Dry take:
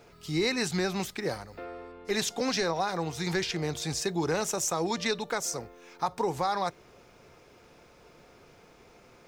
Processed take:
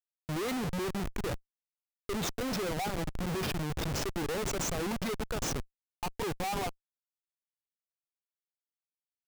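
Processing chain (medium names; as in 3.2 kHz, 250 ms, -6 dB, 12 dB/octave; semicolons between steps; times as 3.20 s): spectral contrast enhancement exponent 1.7; Schmitt trigger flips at -31 dBFS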